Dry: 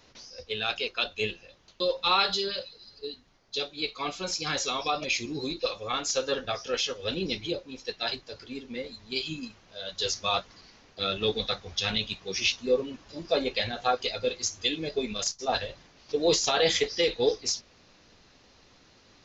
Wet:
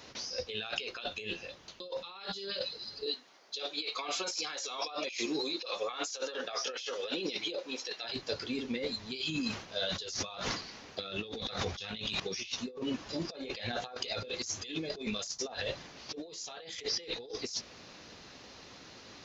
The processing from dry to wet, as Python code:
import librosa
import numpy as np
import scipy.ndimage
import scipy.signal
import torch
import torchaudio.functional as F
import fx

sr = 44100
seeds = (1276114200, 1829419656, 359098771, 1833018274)

y = fx.highpass(x, sr, hz=400.0, slope=12, at=(3.06, 8.04))
y = fx.sustainer(y, sr, db_per_s=100.0, at=(9.29, 12.2))
y = fx.highpass(y, sr, hz=120.0, slope=6)
y = fx.over_compress(y, sr, threshold_db=-39.0, ratio=-1.0)